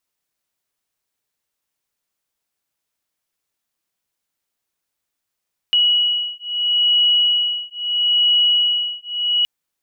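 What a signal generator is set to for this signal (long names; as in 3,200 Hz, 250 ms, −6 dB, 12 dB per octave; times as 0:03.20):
two tones that beat 2,920 Hz, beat 0.76 Hz, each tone −17.5 dBFS 3.72 s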